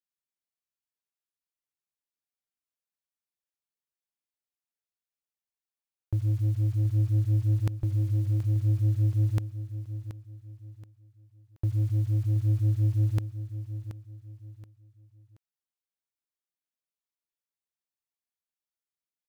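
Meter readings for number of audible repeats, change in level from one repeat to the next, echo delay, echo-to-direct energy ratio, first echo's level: 3, -9.5 dB, 0.727 s, -11.5 dB, -12.0 dB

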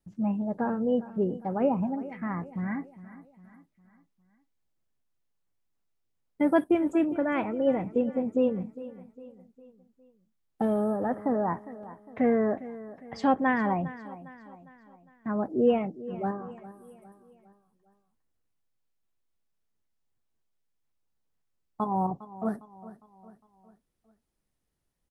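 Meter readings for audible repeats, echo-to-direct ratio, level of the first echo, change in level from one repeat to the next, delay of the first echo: 3, -15.5 dB, -16.5 dB, -6.5 dB, 0.406 s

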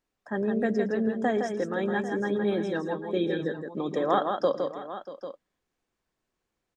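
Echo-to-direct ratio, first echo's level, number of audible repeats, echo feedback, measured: -4.5 dB, -19.5 dB, 4, no steady repeat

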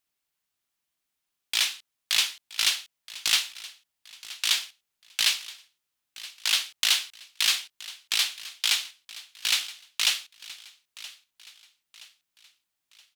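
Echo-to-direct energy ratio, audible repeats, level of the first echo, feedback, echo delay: -17.0 dB, 3, -18.0 dB, 42%, 0.973 s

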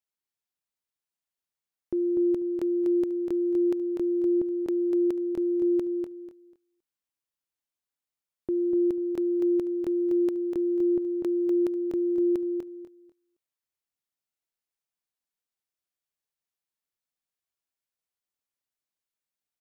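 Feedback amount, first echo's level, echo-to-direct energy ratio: 22%, -5.0 dB, -5.0 dB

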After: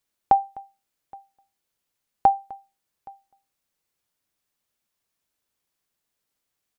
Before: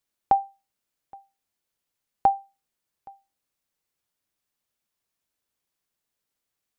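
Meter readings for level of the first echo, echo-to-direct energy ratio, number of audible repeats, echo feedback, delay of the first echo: -22.5 dB, -22.5 dB, 1, no steady repeat, 0.254 s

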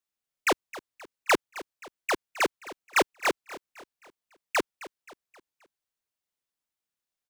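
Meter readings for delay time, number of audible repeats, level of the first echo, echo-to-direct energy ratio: 0.264 s, 3, -17.0 dB, -16.0 dB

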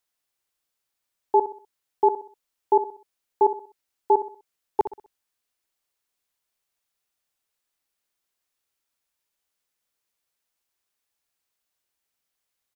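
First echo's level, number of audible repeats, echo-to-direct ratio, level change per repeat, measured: -12.0 dB, 3, -11.5 dB, -8.5 dB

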